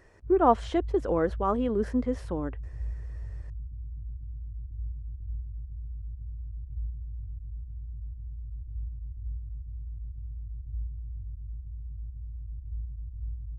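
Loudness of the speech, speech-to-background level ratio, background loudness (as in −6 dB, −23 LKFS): −27.0 LKFS, 13.5 dB, −40.5 LKFS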